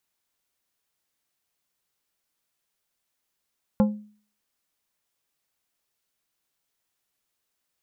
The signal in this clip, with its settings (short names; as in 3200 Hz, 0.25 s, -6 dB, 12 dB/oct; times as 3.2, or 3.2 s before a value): glass hit plate, lowest mode 210 Hz, decay 0.45 s, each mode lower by 6.5 dB, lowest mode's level -13.5 dB